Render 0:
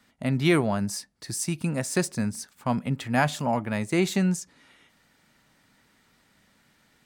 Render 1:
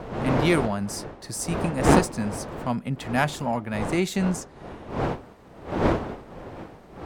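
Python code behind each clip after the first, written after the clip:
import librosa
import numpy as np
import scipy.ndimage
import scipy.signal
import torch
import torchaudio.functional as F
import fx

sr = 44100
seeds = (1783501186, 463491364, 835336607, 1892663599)

y = fx.dmg_wind(x, sr, seeds[0], corner_hz=620.0, level_db=-28.0)
y = fx.cheby_harmonics(y, sr, harmonics=(2, 8), levels_db=(-8, -27), full_scale_db=-4.0)
y = F.gain(torch.from_numpy(y), -1.0).numpy()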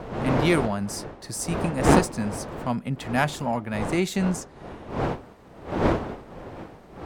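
y = x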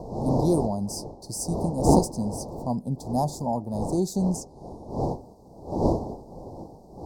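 y = scipy.signal.sosfilt(scipy.signal.ellip(3, 1.0, 40, [870.0, 4800.0], 'bandstop', fs=sr, output='sos'), x)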